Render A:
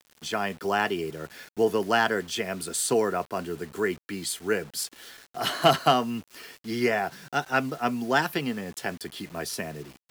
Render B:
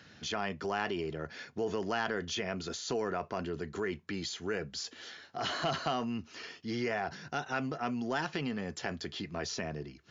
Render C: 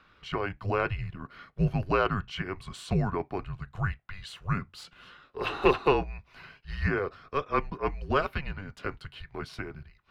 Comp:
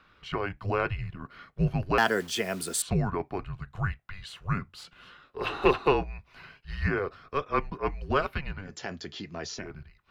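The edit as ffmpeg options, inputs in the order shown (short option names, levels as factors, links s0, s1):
-filter_complex "[2:a]asplit=3[s0][s1][s2];[s0]atrim=end=1.982[s3];[0:a]atrim=start=1.978:end=2.822[s4];[s1]atrim=start=2.818:end=8.77[s5];[1:a]atrim=start=8.61:end=9.7[s6];[s2]atrim=start=9.54[s7];[s3][s4]acrossfade=d=0.004:c1=hsin:c2=hsin[s8];[s8][s5]acrossfade=d=0.004:c1=hsin:c2=hsin[s9];[s9][s6]acrossfade=d=0.16:c1=tri:c2=tri[s10];[s10][s7]acrossfade=d=0.16:c1=tri:c2=tri"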